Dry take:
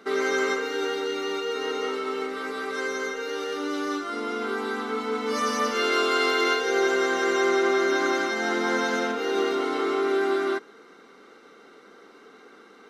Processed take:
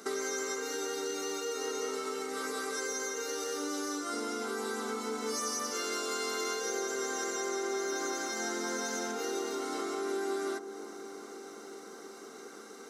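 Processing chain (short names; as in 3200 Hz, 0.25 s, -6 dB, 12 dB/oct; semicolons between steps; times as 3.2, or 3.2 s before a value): HPF 94 Hz; resonant high shelf 4600 Hz +13.5 dB, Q 1.5; compressor 6:1, threshold -33 dBFS, peak gain reduction 13.5 dB; dark delay 0.354 s, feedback 80%, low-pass 1000 Hz, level -12 dB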